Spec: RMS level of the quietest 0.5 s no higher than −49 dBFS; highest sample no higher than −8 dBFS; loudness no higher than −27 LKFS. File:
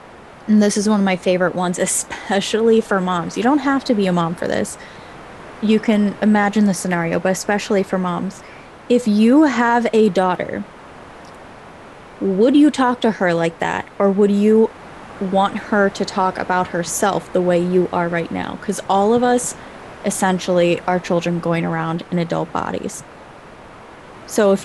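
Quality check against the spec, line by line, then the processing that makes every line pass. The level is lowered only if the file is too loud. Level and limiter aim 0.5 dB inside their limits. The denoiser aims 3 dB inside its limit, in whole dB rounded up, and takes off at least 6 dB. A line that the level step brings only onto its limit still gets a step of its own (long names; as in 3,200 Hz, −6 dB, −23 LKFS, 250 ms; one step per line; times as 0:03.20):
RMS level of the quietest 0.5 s −39 dBFS: out of spec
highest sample −4.5 dBFS: out of spec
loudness −17.5 LKFS: out of spec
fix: broadband denoise 6 dB, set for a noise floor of −39 dBFS
level −10 dB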